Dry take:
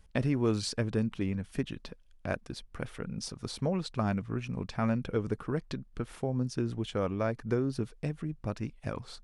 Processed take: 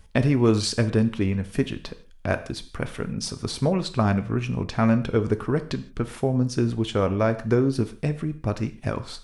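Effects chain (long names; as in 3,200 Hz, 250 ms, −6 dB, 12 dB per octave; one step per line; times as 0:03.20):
reverb whose tail is shaped and stops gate 190 ms falling, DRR 10 dB
level +8.5 dB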